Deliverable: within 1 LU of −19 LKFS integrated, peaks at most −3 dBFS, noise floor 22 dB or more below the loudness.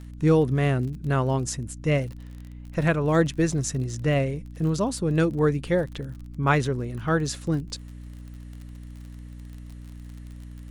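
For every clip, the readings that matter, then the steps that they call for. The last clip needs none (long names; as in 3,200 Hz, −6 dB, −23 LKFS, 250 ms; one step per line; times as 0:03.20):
crackle rate 37 per second; mains hum 60 Hz; hum harmonics up to 300 Hz; level of the hum −37 dBFS; integrated loudness −25.0 LKFS; sample peak −7.0 dBFS; target loudness −19.0 LKFS
→ click removal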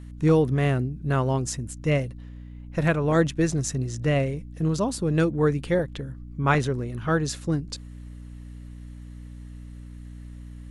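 crackle rate 0 per second; mains hum 60 Hz; hum harmonics up to 300 Hz; level of the hum −38 dBFS
→ mains-hum notches 60/120/180/240/300 Hz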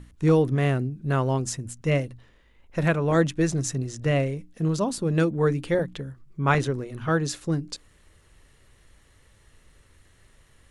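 mains hum none found; integrated loudness −25.0 LKFS; sample peak −7.0 dBFS; target loudness −19.0 LKFS
→ level +6 dB
brickwall limiter −3 dBFS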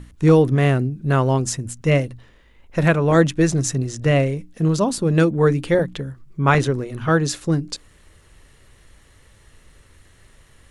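integrated loudness −19.0 LKFS; sample peak −3.0 dBFS; background noise floor −53 dBFS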